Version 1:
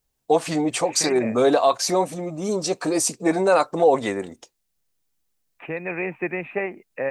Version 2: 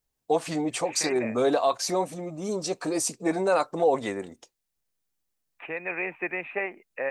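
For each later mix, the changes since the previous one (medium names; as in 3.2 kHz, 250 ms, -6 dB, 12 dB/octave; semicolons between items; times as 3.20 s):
first voice -5.5 dB; second voice: add high-pass 720 Hz 6 dB/octave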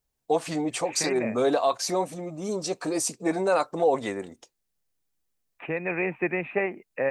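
second voice: remove high-pass 720 Hz 6 dB/octave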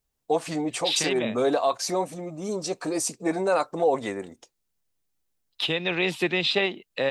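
second voice: remove rippled Chebyshev low-pass 2.5 kHz, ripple 3 dB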